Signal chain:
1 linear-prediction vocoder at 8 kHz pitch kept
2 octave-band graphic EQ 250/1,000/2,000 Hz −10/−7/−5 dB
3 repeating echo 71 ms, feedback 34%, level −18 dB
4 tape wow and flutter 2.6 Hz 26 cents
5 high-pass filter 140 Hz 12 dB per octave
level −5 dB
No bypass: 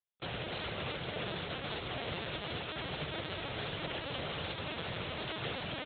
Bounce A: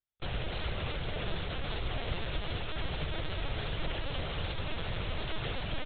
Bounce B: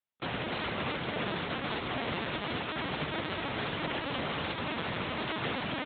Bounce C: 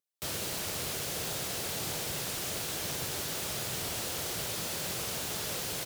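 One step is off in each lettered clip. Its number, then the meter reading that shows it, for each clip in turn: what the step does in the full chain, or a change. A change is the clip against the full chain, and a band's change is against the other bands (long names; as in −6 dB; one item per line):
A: 5, 125 Hz band +6.0 dB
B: 2, 4 kHz band −3.5 dB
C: 1, 4 kHz band +3.5 dB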